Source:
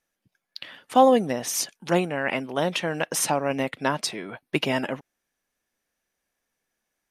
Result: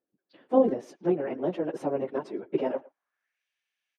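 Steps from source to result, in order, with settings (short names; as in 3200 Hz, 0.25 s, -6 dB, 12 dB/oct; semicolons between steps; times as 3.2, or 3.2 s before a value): band-pass sweep 360 Hz -> 2800 Hz, 4.53–6.18; plain phase-vocoder stretch 0.56×; speakerphone echo 0.11 s, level -21 dB; gain +7.5 dB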